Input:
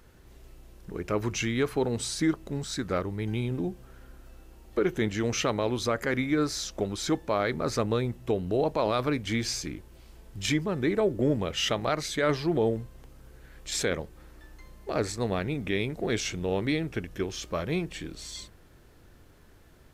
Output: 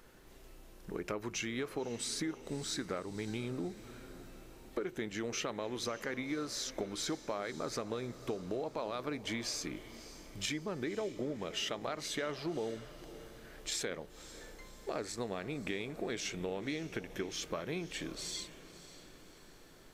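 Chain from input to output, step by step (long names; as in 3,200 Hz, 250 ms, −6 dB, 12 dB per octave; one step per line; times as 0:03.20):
parametric band 72 Hz −14 dB 1.7 octaves
downward compressor, threshold −35 dBFS, peak gain reduction 13 dB
on a send: feedback delay with all-pass diffusion 566 ms, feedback 50%, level −15 dB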